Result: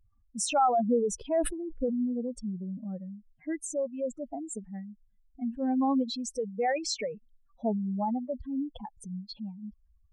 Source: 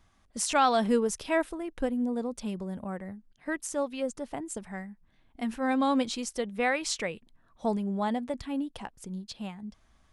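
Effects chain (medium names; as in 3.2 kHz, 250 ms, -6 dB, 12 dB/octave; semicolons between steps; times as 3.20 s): spectral contrast enhancement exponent 2.9; vibrato 1.5 Hz 39 cents; 1.31–1.96 s: decay stretcher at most 79 dB/s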